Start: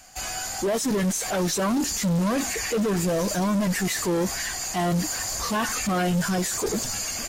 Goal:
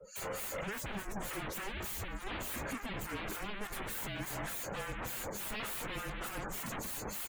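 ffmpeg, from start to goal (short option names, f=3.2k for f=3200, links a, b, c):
-filter_complex "[0:a]aecho=1:1:211:0.335,aeval=exprs='(tanh(31.6*val(0)+0.2)-tanh(0.2))/31.6':c=same,acrossover=split=1400[a][b];[a]aeval=exprs='val(0)*(1-1/2+1/2*cos(2*PI*3.4*n/s))':c=same[c];[b]aeval=exprs='val(0)*(1-1/2-1/2*cos(2*PI*3.4*n/s))':c=same[d];[c][d]amix=inputs=2:normalize=0,aeval=exprs='0.01*(abs(mod(val(0)/0.01+3,4)-2)-1)':c=same,lowshelf=f=120:g=-8.5,afreqshift=-210,afftdn=nr=24:nf=-55,equalizer=f=5.3k:w=1.4:g=-9.5,volume=7.5dB"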